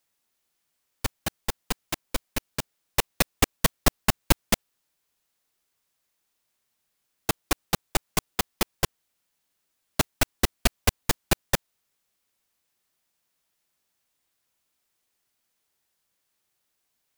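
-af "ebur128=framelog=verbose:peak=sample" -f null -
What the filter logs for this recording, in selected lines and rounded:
Integrated loudness:
  I:         -28.2 LUFS
  Threshold: -38.2 LUFS
Loudness range:
  LRA:         6.2 LU
  Threshold: -50.0 LUFS
  LRA low:   -33.8 LUFS
  LRA high:  -27.6 LUFS
Sample peak:
  Peak:       -3.1 dBFS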